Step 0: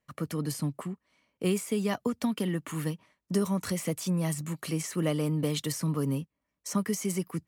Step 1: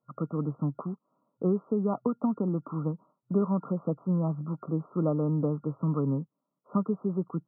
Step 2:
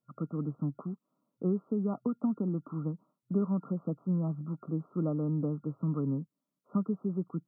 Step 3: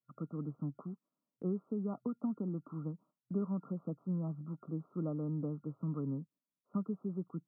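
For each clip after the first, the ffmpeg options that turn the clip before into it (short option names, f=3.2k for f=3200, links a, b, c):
-af "afftfilt=real='re*between(b*sr/4096,120,1400)':imag='im*between(b*sr/4096,120,1400)':win_size=4096:overlap=0.75,volume=1.5dB"
-af "equalizer=f=125:t=o:w=1:g=-4,equalizer=f=500:t=o:w=1:g=-6,equalizer=f=1k:t=o:w=1:g=-9"
-af "agate=range=-7dB:threshold=-56dB:ratio=16:detection=peak,volume=-6dB"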